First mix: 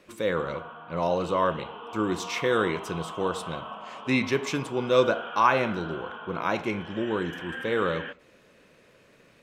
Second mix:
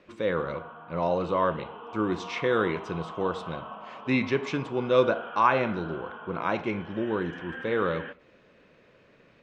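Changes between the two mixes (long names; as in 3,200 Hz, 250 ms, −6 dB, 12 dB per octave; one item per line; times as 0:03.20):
background: add high-frequency loss of the air 220 metres
master: add high-frequency loss of the air 160 metres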